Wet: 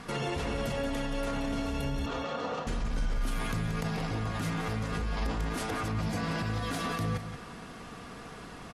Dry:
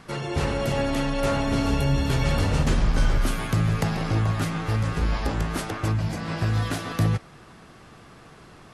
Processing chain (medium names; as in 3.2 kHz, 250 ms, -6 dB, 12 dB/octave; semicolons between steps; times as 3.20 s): comb 4.2 ms, depth 38%; in parallel at +1 dB: compressor with a negative ratio -29 dBFS; on the sum: peak limiter -17.5 dBFS, peak gain reduction 10 dB; Chebyshev shaper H 8 -40 dB, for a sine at -17.5 dBFS; 2.06–2.67 s: cabinet simulation 270–5900 Hz, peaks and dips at 500 Hz +5 dB, 740 Hz +6 dB, 1.2 kHz +9 dB, 2.2 kHz -5 dB, 5 kHz -5 dB; on a send: delay 179 ms -9.5 dB; on the sum: trim -7 dB